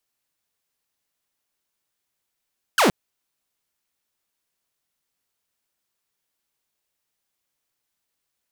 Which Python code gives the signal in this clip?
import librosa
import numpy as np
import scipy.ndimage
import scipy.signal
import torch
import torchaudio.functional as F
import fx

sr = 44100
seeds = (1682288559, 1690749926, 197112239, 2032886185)

y = fx.laser_zap(sr, level_db=-11.5, start_hz=1700.0, end_hz=160.0, length_s=0.12, wave='saw')